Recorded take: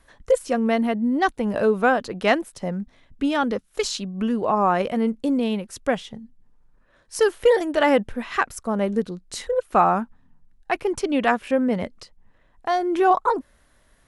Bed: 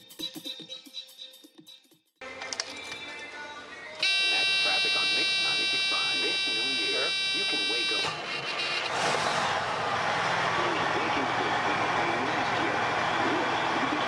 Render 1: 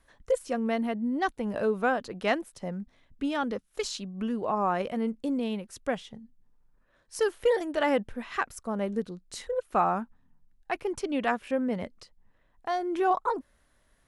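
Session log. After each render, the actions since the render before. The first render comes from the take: trim -7.5 dB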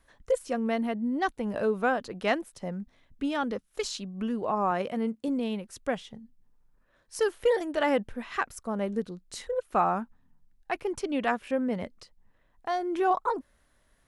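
4.71–5.28 s: high-pass 91 Hz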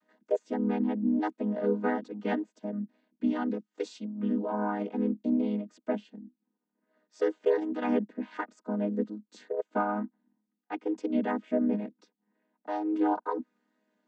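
vocoder on a held chord minor triad, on G#3; wow and flutter 21 cents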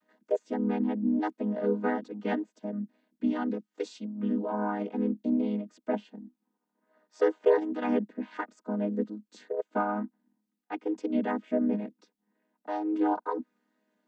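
5.93–7.59 s: peaking EQ 930 Hz +8 dB 1.6 oct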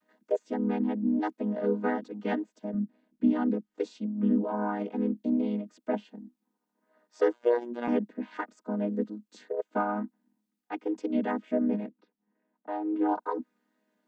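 2.74–4.44 s: tilt EQ -2 dB/octave; 7.33–7.88 s: robot voice 120 Hz; 11.87–13.09 s: distance through air 350 m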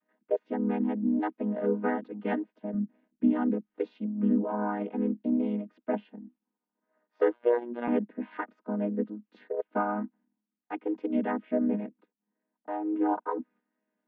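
low-pass 2.9 kHz 24 dB/octave; gate -58 dBFS, range -7 dB

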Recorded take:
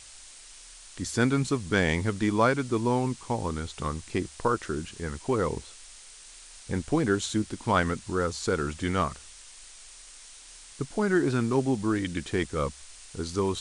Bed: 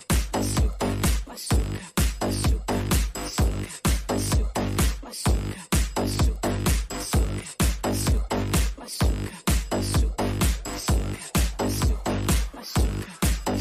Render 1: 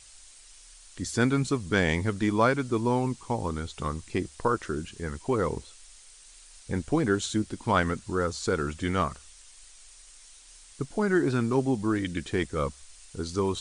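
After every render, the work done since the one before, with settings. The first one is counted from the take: noise reduction 6 dB, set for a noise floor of -49 dBFS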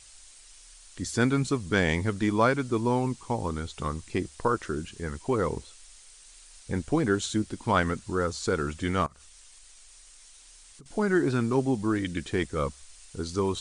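9.06–10.86 s: compression 10:1, threshold -47 dBFS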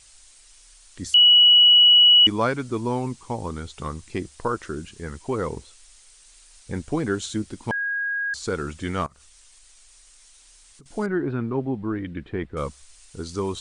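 1.14–2.27 s: bleep 2.93 kHz -10 dBFS; 7.71–8.34 s: bleep 1.64 kHz -23 dBFS; 11.06–12.57 s: distance through air 490 m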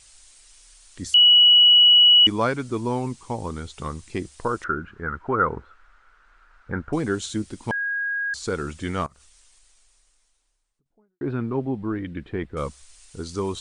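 4.64–6.93 s: resonant low-pass 1.4 kHz, resonance Q 7; 8.82–11.21 s: studio fade out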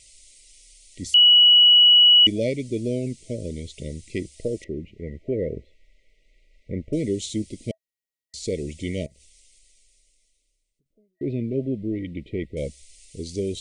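FFT band-reject 650–1900 Hz; dynamic bell 810 Hz, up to +4 dB, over -40 dBFS, Q 1.8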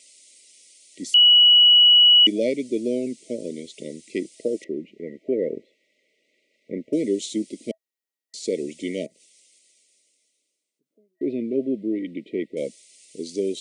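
high-pass 250 Hz 24 dB/octave; bass shelf 320 Hz +7.5 dB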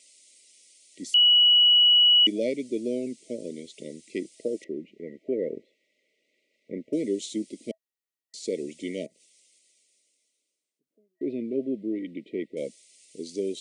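trim -4.5 dB

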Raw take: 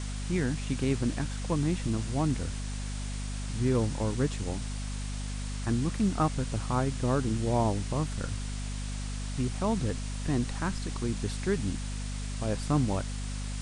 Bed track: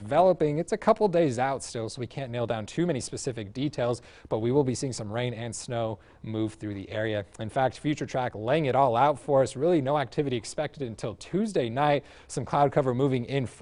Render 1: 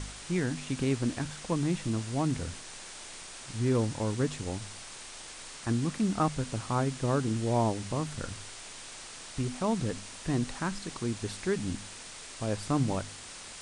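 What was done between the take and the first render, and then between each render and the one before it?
de-hum 50 Hz, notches 5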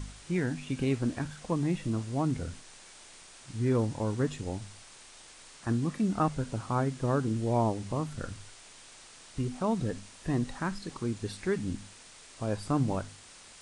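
noise print and reduce 7 dB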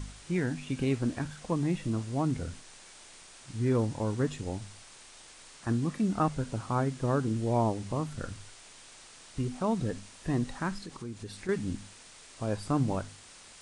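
10.83–11.49 s: compression 2:1, threshold -41 dBFS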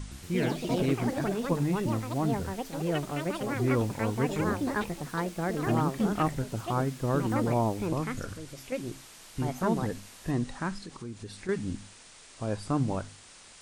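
ever faster or slower copies 115 ms, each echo +5 st, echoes 3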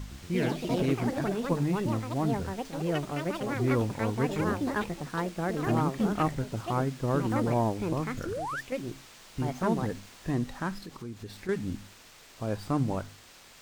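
8.25–8.61 s: painted sound rise 300–1900 Hz -34 dBFS; sliding maximum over 3 samples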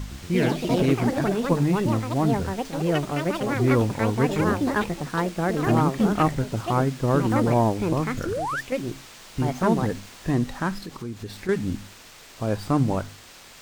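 trim +6.5 dB

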